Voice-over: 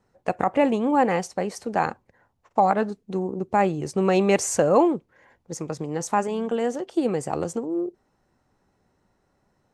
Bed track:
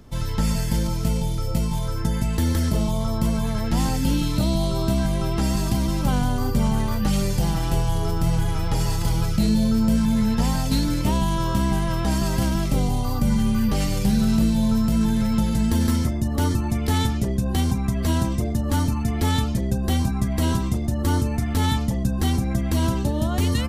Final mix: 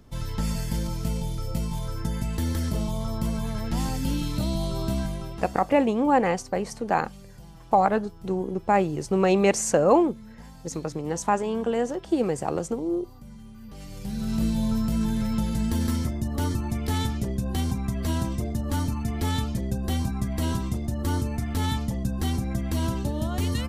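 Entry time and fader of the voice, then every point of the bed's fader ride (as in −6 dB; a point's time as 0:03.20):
5.15 s, −0.5 dB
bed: 0:04.99 −5.5 dB
0:05.86 −24.5 dB
0:13.57 −24.5 dB
0:14.45 −5 dB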